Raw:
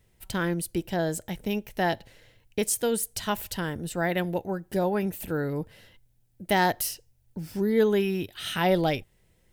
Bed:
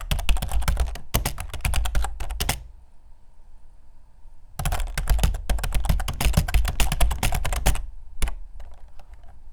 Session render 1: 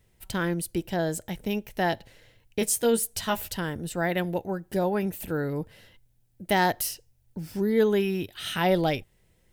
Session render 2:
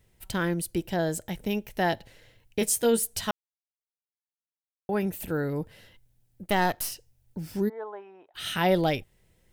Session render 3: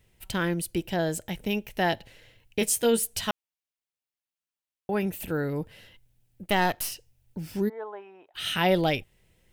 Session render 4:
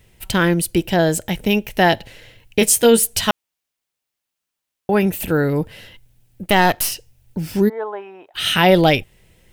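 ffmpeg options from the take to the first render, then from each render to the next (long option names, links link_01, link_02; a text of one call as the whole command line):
ffmpeg -i in.wav -filter_complex "[0:a]asettb=1/sr,asplit=3[link_01][link_02][link_03];[link_01]atrim=end=2.604[link_04];[link_02]atrim=start=2.6:end=3.5,asetpts=PTS-STARTPTS,afade=type=in:duration=0.004:curve=qsin,afade=type=out:start_time=0.896:duration=0.004:curve=qsin,asplit=2[link_05][link_06];[link_06]adelay=13,volume=-4.5dB[link_07];[link_05][link_07]amix=inputs=2:normalize=0,atrim=end_sample=39690[link_08];[link_03]atrim=start=3.496[link_09];[link_04][link_08]acrossfade=duration=0.004:curve1=hsin:curve2=qsin[link_10];[link_10][link_09]acrossfade=duration=0.004:curve1=qsin:curve2=hsin" out.wav
ffmpeg -i in.wav -filter_complex "[0:a]asettb=1/sr,asplit=3[link_01][link_02][link_03];[link_01]atrim=end=6.434[link_04];[link_02]atrim=start=6.43:end=6.92,asetpts=PTS-STARTPTS,afade=type=in:duration=0.004:curve=qsin,afade=type=out:start_time=0.486:duration=0.004:curve=qsin,aeval=exprs='if(lt(val(0),0),0.447*val(0),val(0))':channel_layout=same[link_05];[link_03]atrim=start=6.916[link_06];[link_04][link_05]acrossfade=duration=0.004:curve1=hsin:curve2=qsin[link_07];[link_07][link_06]acrossfade=duration=0.004:curve1=qsin:curve2=hsin,asplit=3[link_08][link_09][link_10];[link_08]afade=type=out:start_time=7.68:duration=0.02[link_11];[link_09]asuperpass=centerf=880:order=4:qfactor=1.7,afade=type=in:start_time=7.68:duration=0.02,afade=type=out:start_time=8.34:duration=0.02[link_12];[link_10]afade=type=in:start_time=8.34:duration=0.02[link_13];[link_11][link_12][link_13]amix=inputs=3:normalize=0,asplit=3[link_14][link_15][link_16];[link_14]atrim=end=3.31,asetpts=PTS-STARTPTS,afade=type=out:start_time=3.306:duration=0.004:curve=hsin[link_17];[link_15]atrim=start=3.31:end=4.89,asetpts=PTS-STARTPTS,volume=0[link_18];[link_16]atrim=start=4.89,asetpts=PTS-STARTPTS,afade=type=in:duration=0.004:curve=hsin[link_19];[link_17][link_18][link_19]concat=n=3:v=0:a=1" out.wav
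ffmpeg -i in.wav -af "equalizer=frequency=2700:width_type=o:width=0.7:gain=5" out.wav
ffmpeg -i in.wav -af "volume=11dB,alimiter=limit=-2dB:level=0:latency=1" out.wav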